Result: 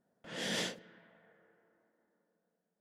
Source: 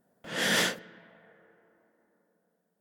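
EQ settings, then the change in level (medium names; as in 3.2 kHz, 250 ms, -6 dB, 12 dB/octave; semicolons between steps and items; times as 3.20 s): dynamic bell 1.4 kHz, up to -8 dB, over -43 dBFS, Q 1.2; distance through air 75 m; treble shelf 8.8 kHz +10 dB; -7.0 dB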